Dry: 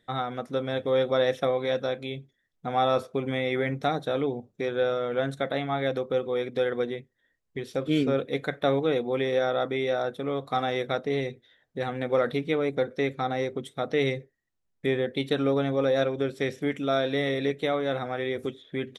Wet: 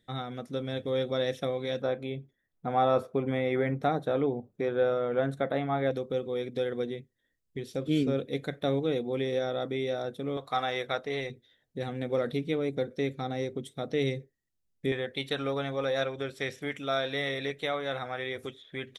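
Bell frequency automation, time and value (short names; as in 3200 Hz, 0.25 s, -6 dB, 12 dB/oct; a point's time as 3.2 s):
bell -9.5 dB 2.5 oct
1000 Hz
from 1.82 s 5100 Hz
from 5.91 s 1200 Hz
from 10.37 s 210 Hz
from 11.3 s 1200 Hz
from 14.92 s 260 Hz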